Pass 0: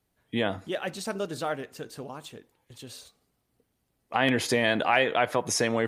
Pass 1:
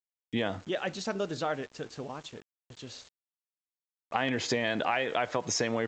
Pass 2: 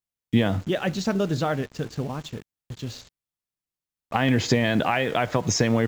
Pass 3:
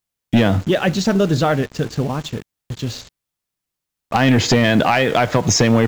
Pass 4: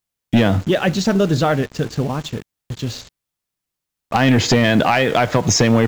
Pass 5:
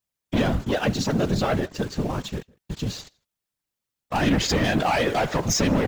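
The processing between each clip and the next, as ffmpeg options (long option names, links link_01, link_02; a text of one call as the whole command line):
ffmpeg -i in.wav -af "acompressor=threshold=-25dB:ratio=5,aresample=16000,aeval=exprs='val(0)*gte(abs(val(0)),0.00335)':channel_layout=same,aresample=44100" out.wav
ffmpeg -i in.wav -filter_complex "[0:a]bass=frequency=250:gain=12,treble=frequency=4000:gain=0,asplit=2[link_01][link_02];[link_02]acrusher=bits=6:mix=0:aa=0.000001,volume=-10dB[link_03];[link_01][link_03]amix=inputs=2:normalize=0,volume=2.5dB" out.wav
ffmpeg -i in.wav -af "aeval=exprs='0.447*sin(PI/2*1.78*val(0)/0.447)':channel_layout=same" out.wav
ffmpeg -i in.wav -af anull out.wav
ffmpeg -i in.wav -filter_complex "[0:a]asplit=2[link_01][link_02];[link_02]adelay=157.4,volume=-28dB,highshelf=frequency=4000:gain=-3.54[link_03];[link_01][link_03]amix=inputs=2:normalize=0,asoftclip=type=tanh:threshold=-13.5dB,afftfilt=real='hypot(re,im)*cos(2*PI*random(0))':imag='hypot(re,im)*sin(2*PI*random(1))':win_size=512:overlap=0.75,volume=2.5dB" out.wav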